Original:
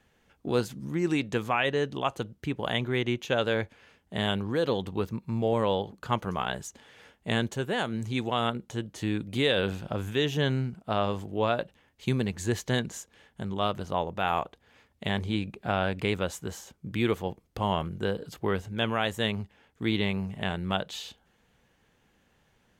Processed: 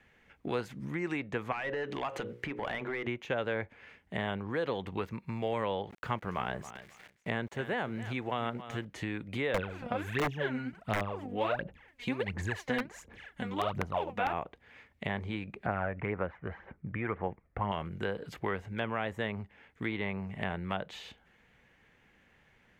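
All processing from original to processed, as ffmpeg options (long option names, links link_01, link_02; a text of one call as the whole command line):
ffmpeg -i in.wav -filter_complex "[0:a]asettb=1/sr,asplit=3[link_01][link_02][link_03];[link_01]atrim=end=1.524[link_04];[link_02]atrim=start=1.52:end=3.07,asetpts=PTS-STARTPTS,afade=type=in:duration=0.004:curve=qsin,afade=type=out:start_time=1.546:duration=0.004:curve=qsin,bandreject=frequency=60:width_type=h:width=6,bandreject=frequency=120:width_type=h:width=6,bandreject=frequency=180:width_type=h:width=6,bandreject=frequency=240:width_type=h:width=6,bandreject=frequency=300:width_type=h:width=6,bandreject=frequency=360:width_type=h:width=6,bandreject=frequency=420:width_type=h:width=6,bandreject=frequency=480:width_type=h:width=6,bandreject=frequency=540:width_type=h:width=6,acompressor=threshold=-37dB:ratio=6:attack=3.2:release=140:knee=1:detection=peak,asplit=2[link_05][link_06];[link_06]highpass=frequency=720:poles=1,volume=20dB,asoftclip=type=tanh:threshold=-22.5dB[link_07];[link_05][link_07]amix=inputs=2:normalize=0,lowpass=frequency=6300:poles=1,volume=-6dB[link_08];[link_03]atrim=start=3.066[link_09];[link_04][link_08]acrossfade=duration=0.004:curve1=hsin:curve2=qsin[link_10];[link_10][link_09]acrossfade=duration=0.004:curve1=qsin:curve2=hsin,asettb=1/sr,asplit=3[link_11][link_12][link_13];[link_11]atrim=end=5.904[link_14];[link_12]atrim=start=5.9:end=8.85,asetpts=PTS-STARTPTS,afade=type=in:duration=0.004:curve=qsin,afade=type=out:start_time=2.946:duration=0.004:curve=qsin,aeval=exprs='val(0)*gte(abs(val(0)),0.00398)':channel_layout=same,aecho=1:1:272|544:0.133|0.024,atrim=end_sample=130095[link_15];[link_13]atrim=start=8.846[link_16];[link_14][link_15]acrossfade=duration=0.004:curve1=hsin:curve2=qsin[link_17];[link_17][link_16]acrossfade=duration=0.004:curve1=qsin:curve2=hsin,asettb=1/sr,asplit=3[link_18][link_19][link_20];[link_18]atrim=end=9.544[link_21];[link_19]atrim=start=9.54:end=14.33,asetpts=PTS-STARTPTS,afade=type=in:duration=0.004:curve=qsin,afade=type=out:start_time=4.786:duration=0.004:curve=qsin,aphaser=in_gain=1:out_gain=1:delay=4.2:decay=0.77:speed=1.4:type=sinusoidal,aeval=exprs='(mod(3.55*val(0)+1,2)-1)/3.55':channel_layout=same[link_22];[link_20]atrim=start=14.326[link_23];[link_21][link_22]acrossfade=duration=0.004:curve1=hsin:curve2=qsin[link_24];[link_24][link_23]acrossfade=duration=0.004:curve1=qsin:curve2=hsin,asettb=1/sr,asplit=3[link_25][link_26][link_27];[link_25]atrim=end=15.664[link_28];[link_26]atrim=start=15.66:end=17.72,asetpts=PTS-STARTPTS,afade=type=in:duration=0.004:curve=qsin,afade=type=out:start_time=2.056:duration=0.004:curve=qsin,lowpass=frequency=1900:width=0.5412,lowpass=frequency=1900:width=1.3066,aphaser=in_gain=1:out_gain=1:delay=1.7:decay=0.44:speed=1.9:type=sinusoidal[link_29];[link_27]atrim=start=17.716[link_30];[link_28][link_29]acrossfade=duration=0.004:curve1=hsin:curve2=qsin[link_31];[link_31][link_30]acrossfade=duration=0.004:curve1=qsin:curve2=hsin,equalizer=frequency=2100:width=1.7:gain=11,acrossover=split=580|1300[link_32][link_33][link_34];[link_32]acompressor=threshold=-36dB:ratio=4[link_35];[link_33]acompressor=threshold=-34dB:ratio=4[link_36];[link_34]acompressor=threshold=-41dB:ratio=4[link_37];[link_35][link_36][link_37]amix=inputs=3:normalize=0,highshelf=frequency=3600:gain=-8" out.wav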